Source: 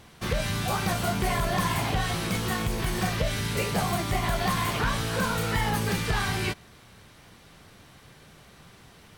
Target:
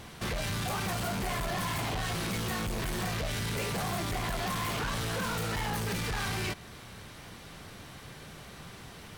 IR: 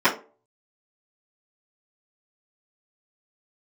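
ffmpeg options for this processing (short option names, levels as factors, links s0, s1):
-filter_complex "[0:a]asplit=2[s0][s1];[s1]acompressor=threshold=0.02:ratio=6,volume=0.794[s2];[s0][s2]amix=inputs=2:normalize=0,asoftclip=type=tanh:threshold=0.0299"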